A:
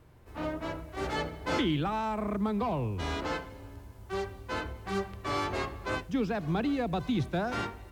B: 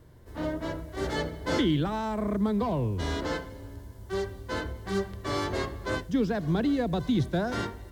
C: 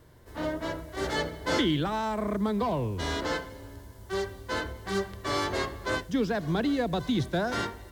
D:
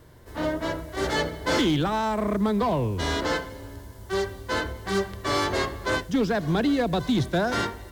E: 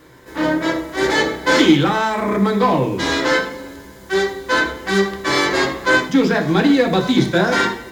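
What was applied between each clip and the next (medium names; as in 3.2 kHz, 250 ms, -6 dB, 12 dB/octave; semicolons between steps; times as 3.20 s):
graphic EQ with 31 bands 800 Hz -7 dB, 1.25 kHz -7 dB, 2.5 kHz -11 dB; trim +4 dB
bass shelf 430 Hz -7 dB; trim +3.5 dB
overload inside the chain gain 22 dB; trim +4.5 dB
reverberation RT60 0.50 s, pre-delay 3 ms, DRR 1 dB; trim +5.5 dB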